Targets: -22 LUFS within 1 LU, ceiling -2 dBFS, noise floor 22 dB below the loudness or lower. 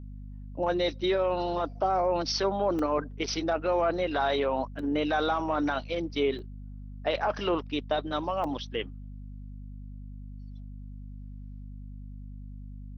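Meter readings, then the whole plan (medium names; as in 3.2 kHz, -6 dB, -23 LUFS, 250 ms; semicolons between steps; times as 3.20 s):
dropouts 4; longest dropout 3.1 ms; hum 50 Hz; highest harmonic 250 Hz; hum level -39 dBFS; loudness -29.0 LUFS; peak level -16.0 dBFS; loudness target -22.0 LUFS
-> interpolate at 2.79/4.79/6.39/8.44 s, 3.1 ms; hum notches 50/100/150/200/250 Hz; trim +7 dB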